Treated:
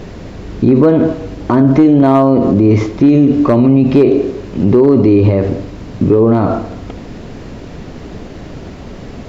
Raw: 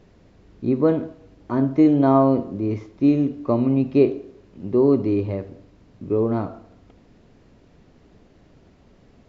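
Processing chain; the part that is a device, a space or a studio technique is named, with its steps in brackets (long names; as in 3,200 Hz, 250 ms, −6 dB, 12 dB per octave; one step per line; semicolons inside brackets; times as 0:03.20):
loud club master (downward compressor 3 to 1, threshold −20 dBFS, peak gain reduction 7.5 dB; hard clipping −15 dBFS, distortion −26 dB; boost into a limiter +25 dB)
level −1 dB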